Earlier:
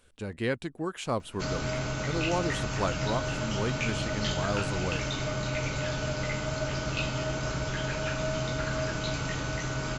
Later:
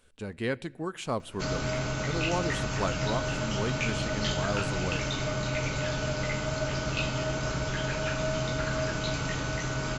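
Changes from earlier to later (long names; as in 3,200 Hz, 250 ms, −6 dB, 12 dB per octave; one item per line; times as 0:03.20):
speech −3.0 dB
reverb: on, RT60 0.85 s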